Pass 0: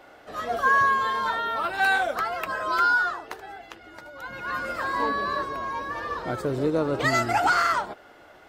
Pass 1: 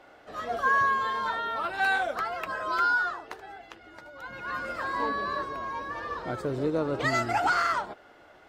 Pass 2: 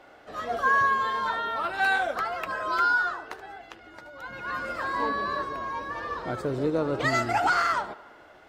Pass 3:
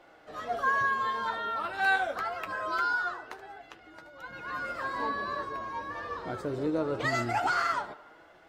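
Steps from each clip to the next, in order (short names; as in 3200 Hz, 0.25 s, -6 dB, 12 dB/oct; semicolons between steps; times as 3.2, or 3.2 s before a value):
high shelf 11000 Hz -10 dB; gain -3.5 dB
tape echo 73 ms, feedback 72%, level -18.5 dB, low-pass 4100 Hz; gain +1.5 dB
flange 0.24 Hz, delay 5.8 ms, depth 5 ms, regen +60%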